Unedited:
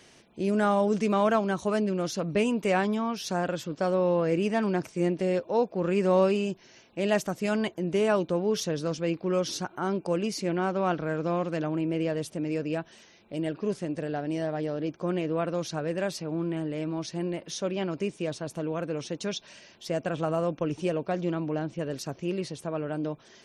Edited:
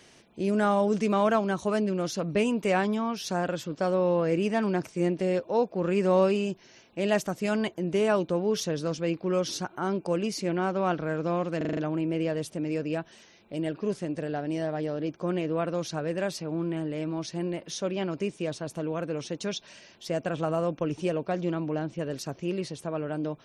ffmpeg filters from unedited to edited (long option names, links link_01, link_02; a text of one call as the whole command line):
ffmpeg -i in.wav -filter_complex "[0:a]asplit=6[link_01][link_02][link_03][link_04][link_05][link_06];[link_01]atrim=end=11.612[link_07];[link_02]atrim=start=11.568:end=11.612[link_08];[link_03]atrim=start=11.568:end=11.612[link_09];[link_04]atrim=start=11.568:end=11.612[link_10];[link_05]atrim=start=11.568:end=11.612[link_11];[link_06]atrim=start=11.568[link_12];[link_07][link_08]acrossfade=duration=0.004:curve1=hsin:curve2=hsin[link_13];[link_13][link_09]acrossfade=duration=0.004:curve1=hsin:curve2=hsin[link_14];[link_14][link_10]acrossfade=duration=0.004:curve1=hsin:curve2=hsin[link_15];[link_15][link_11]acrossfade=duration=0.004:curve1=hsin:curve2=hsin[link_16];[link_16][link_12]acrossfade=duration=0.004:curve1=hsin:curve2=hsin" out.wav